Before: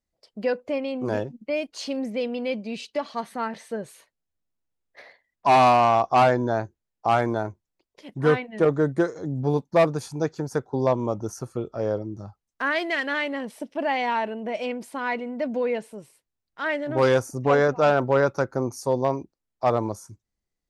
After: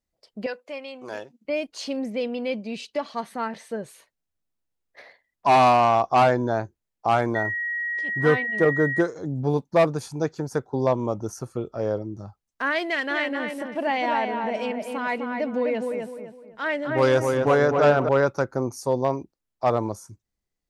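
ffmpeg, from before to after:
ffmpeg -i in.wav -filter_complex "[0:a]asettb=1/sr,asplit=3[link_01][link_02][link_03];[link_01]atrim=end=0.464[link_04];[link_02]atrim=start=0.46:end=1.45,asetpts=PTS-STARTPTS,afade=type=in:duration=0.004:curve=qsin,afade=type=out:start_time=0.986:duration=0.004:curve=qsin,highpass=frequency=1300:poles=1[link_05];[link_03]atrim=start=1.446[link_06];[link_04][link_05]acrossfade=duration=0.004:curve1=hsin:curve2=qsin[link_07];[link_07][link_06]acrossfade=duration=0.004:curve1=qsin:curve2=hsin,asettb=1/sr,asplit=3[link_08][link_09][link_10];[link_08]atrim=end=7.354[link_11];[link_09]atrim=start=7.35:end=9.01,asetpts=PTS-STARTPTS,afade=type=in:duration=0.004:curve=qsin,afade=type=out:start_time=1.656:duration=0.004:curve=qsin,aeval=exprs='val(0)+0.0562*sin(2*PI*1900*n/s)':channel_layout=same[link_12];[link_10]atrim=start=9.006[link_13];[link_11][link_12]acrossfade=duration=0.004:curve1=hsin:curve2=qsin[link_14];[link_14][link_13]acrossfade=duration=0.004:curve1=qsin:curve2=hsin,asettb=1/sr,asplit=3[link_15][link_16][link_17];[link_15]atrim=end=12.854[link_18];[link_16]atrim=start=12.85:end=18.09,asetpts=PTS-STARTPTS,afade=type=in:duration=0.004:curve=qsin,afade=type=out:start_time=5.236:duration=0.004:curve=qsin,asplit=2[link_19][link_20];[link_20]adelay=255,lowpass=frequency=2300:poles=1,volume=-4dB,asplit=2[link_21][link_22];[link_22]adelay=255,lowpass=frequency=2300:poles=1,volume=0.35,asplit=2[link_23][link_24];[link_24]adelay=255,lowpass=frequency=2300:poles=1,volume=0.35,asplit=2[link_25][link_26];[link_26]adelay=255,lowpass=frequency=2300:poles=1,volume=0.35[link_27];[link_19][link_21][link_23][link_25][link_27]amix=inputs=5:normalize=0,atrim=end_sample=231084[link_28];[link_17]atrim=start=18.086[link_29];[link_18][link_28]acrossfade=duration=0.004:curve1=hsin:curve2=qsin[link_30];[link_30][link_29]acrossfade=duration=0.004:curve1=qsin:curve2=hsin" out.wav

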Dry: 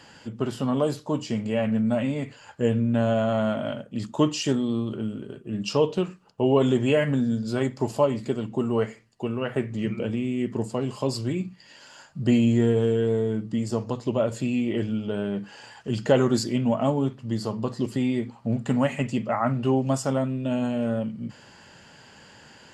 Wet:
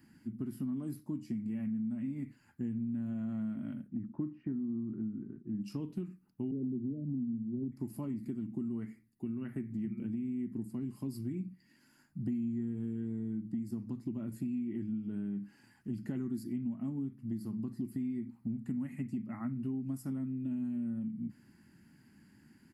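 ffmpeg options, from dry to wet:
ffmpeg -i in.wav -filter_complex "[0:a]asettb=1/sr,asplit=3[link_01][link_02][link_03];[link_01]atrim=end=3.884[link_04];[link_02]atrim=start=3.88:end=5.61,asetpts=PTS-STARTPTS,afade=type=in:duration=0.004:curve=qsin,afade=type=out:start_time=1.726:duration=0.004:curve=qsin,lowpass=frequency=1800:width=0.5412,lowpass=frequency=1800:width=1.3066[link_05];[link_03]atrim=start=5.606[link_06];[link_04][link_05]acrossfade=duration=0.004:curve1=hsin:curve2=qsin[link_07];[link_07][link_06]acrossfade=duration=0.004:curve1=qsin:curve2=hsin,asettb=1/sr,asplit=3[link_08][link_09][link_10];[link_08]atrim=end=6.514[link_11];[link_09]atrim=start=6.51:end=7.72,asetpts=PTS-STARTPTS,afade=type=in:duration=0.004:curve=qsin,afade=type=out:start_time=1.206:duration=0.004:curve=qsin,asuperpass=centerf=250:order=20:qfactor=0.52[link_12];[link_10]atrim=start=7.716[link_13];[link_11][link_12]acrossfade=duration=0.004:curve1=hsin:curve2=qsin[link_14];[link_14][link_13]acrossfade=duration=0.004:curve1=qsin:curve2=hsin,firequalizer=gain_entry='entry(120,0);entry(220,7);entry(330,3);entry(480,-22);entry(770,-16);entry(2100,-6);entry(3100,-20);entry(4900,-11);entry(7000,-14);entry(11000,10)':delay=0.05:min_phase=1,acompressor=threshold=-25dB:ratio=5,volume=-9dB" out.wav

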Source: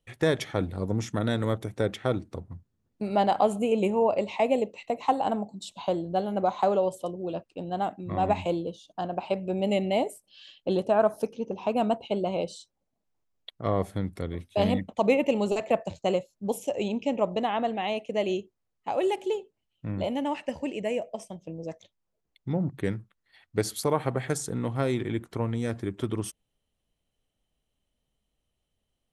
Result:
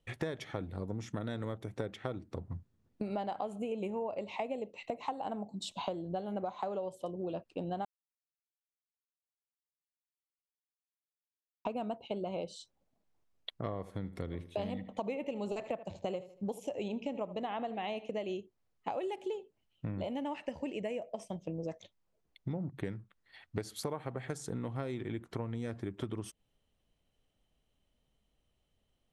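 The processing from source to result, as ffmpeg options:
ffmpeg -i in.wav -filter_complex "[0:a]asettb=1/sr,asplit=3[link_01][link_02][link_03];[link_01]atrim=end=13.614[link_04];[link_02]atrim=start=13.61:end=18.19,asetpts=PTS-STARTPTS,afade=type=in:duration=0.004:curve=qsin,afade=type=out:start_time=4.576:duration=0.004:curve=qsin,asplit=2[link_05][link_06];[link_06]adelay=78,lowpass=frequency=4700:poles=1,volume=-16.5dB,asplit=2[link_07][link_08];[link_08]adelay=78,lowpass=frequency=4700:poles=1,volume=0.28,asplit=2[link_09][link_10];[link_10]adelay=78,lowpass=frequency=4700:poles=1,volume=0.28[link_11];[link_05][link_07][link_09][link_11]amix=inputs=4:normalize=0,atrim=end_sample=201978[link_12];[link_03]atrim=start=18.186[link_13];[link_04][link_12]acrossfade=duration=0.004:curve1=hsin:curve2=qsin[link_14];[link_14][link_13]acrossfade=duration=0.004:curve1=qsin:curve2=hsin,asplit=3[link_15][link_16][link_17];[link_15]atrim=end=7.85,asetpts=PTS-STARTPTS,afade=type=out:start_time=7.846:duration=0.004:curve=hsin[link_18];[link_16]atrim=start=7.85:end=11.65,asetpts=PTS-STARTPTS,volume=0[link_19];[link_17]atrim=start=11.65,asetpts=PTS-STARTPTS,afade=type=in:duration=0.004:curve=hsin[link_20];[link_18][link_19][link_20]concat=n=3:v=0:a=1,highshelf=frequency=7300:gain=-9,acompressor=threshold=-37dB:ratio=8,volume=2.5dB" out.wav

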